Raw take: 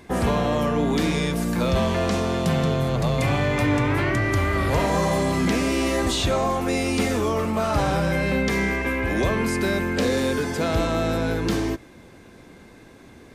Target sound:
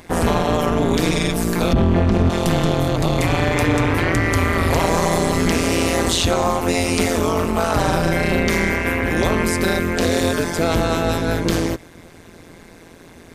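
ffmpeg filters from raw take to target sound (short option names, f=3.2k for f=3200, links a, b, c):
-filter_complex "[0:a]asettb=1/sr,asplit=3[a][b][c];[a]atrim=end=1.734[d];[b]atrim=start=1.73:end=2.3,asetpts=PTS-STARTPTS,afade=t=in:d=0.004:c=qsin,afade=t=out:st=0.566:d=0.004:c=qsin,bass=f=250:g=13,treble=f=4k:g=-14[e];[c]atrim=start=2.296[f];[d][e]acrossfade=d=0.004:c1=hsin:c2=qsin[g];[g][f]acrossfade=d=0.004:c1=qsin:c2=hsin,tremolo=f=170:d=0.974,highshelf=f=5.4k:g=6,alimiter=level_in=13dB:limit=-1dB:release=50:level=0:latency=1,volume=-5dB"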